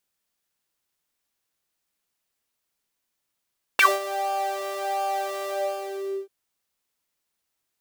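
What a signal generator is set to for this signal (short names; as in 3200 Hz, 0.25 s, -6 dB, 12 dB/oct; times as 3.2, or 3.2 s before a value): synth patch with pulse-width modulation G4, oscillator 2 triangle, interval +7 st, sub -27.5 dB, noise -12 dB, filter highpass, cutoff 360 Hz, Q 11, filter envelope 3 oct, filter decay 0.09 s, filter sustain 30%, attack 2.1 ms, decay 0.20 s, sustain -14.5 dB, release 0.81 s, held 1.68 s, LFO 1.4 Hz, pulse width 37%, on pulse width 17%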